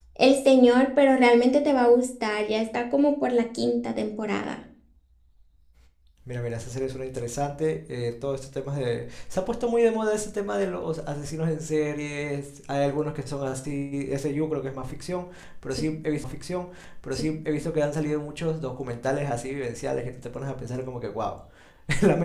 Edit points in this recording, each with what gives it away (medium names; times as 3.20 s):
16.24 s: repeat of the last 1.41 s